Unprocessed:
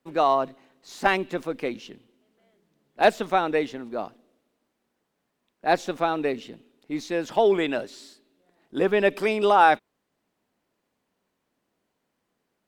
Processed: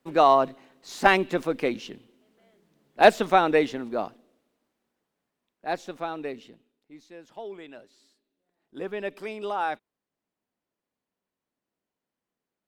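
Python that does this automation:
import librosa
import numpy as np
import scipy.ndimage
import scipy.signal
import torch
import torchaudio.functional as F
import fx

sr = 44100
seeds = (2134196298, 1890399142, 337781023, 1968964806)

y = fx.gain(x, sr, db=fx.line((3.81, 3.0), (5.72, -8.0), (6.47, -8.0), (6.98, -19.0), (7.65, -19.0), (8.82, -11.5)))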